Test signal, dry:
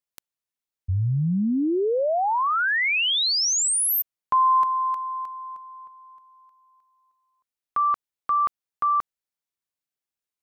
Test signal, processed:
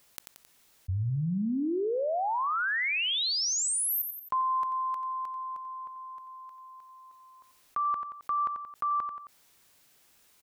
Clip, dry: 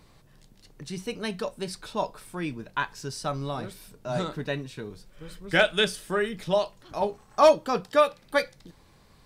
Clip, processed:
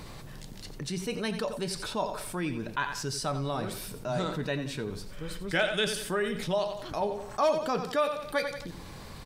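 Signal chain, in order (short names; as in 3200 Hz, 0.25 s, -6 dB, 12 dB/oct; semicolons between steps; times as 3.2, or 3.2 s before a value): feedback echo 89 ms, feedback 28%, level -13.5 dB; fast leveller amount 50%; gain -9 dB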